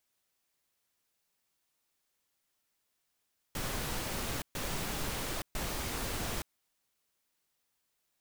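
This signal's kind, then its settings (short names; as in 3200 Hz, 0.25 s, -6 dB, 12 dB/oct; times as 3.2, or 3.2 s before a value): noise bursts pink, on 0.87 s, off 0.13 s, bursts 3, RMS -36 dBFS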